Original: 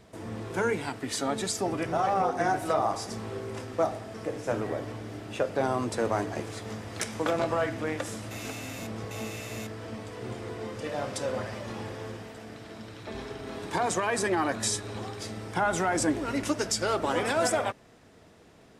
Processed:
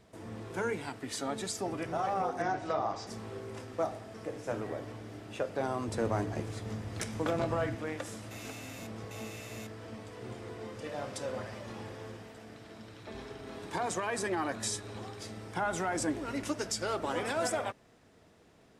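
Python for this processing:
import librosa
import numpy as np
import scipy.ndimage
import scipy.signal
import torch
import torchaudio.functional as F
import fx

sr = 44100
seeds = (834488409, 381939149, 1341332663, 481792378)

y = fx.lowpass(x, sr, hz=6100.0, slope=24, at=(2.42, 3.07))
y = fx.low_shelf(y, sr, hz=230.0, db=10.0, at=(5.88, 7.75))
y = F.gain(torch.from_numpy(y), -6.0).numpy()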